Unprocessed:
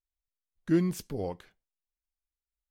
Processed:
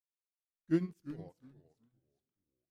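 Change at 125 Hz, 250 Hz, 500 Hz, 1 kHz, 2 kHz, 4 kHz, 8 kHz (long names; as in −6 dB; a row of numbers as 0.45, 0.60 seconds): −8.0 dB, −6.0 dB, −8.5 dB, −14.5 dB, −7.5 dB, below −10 dB, below −20 dB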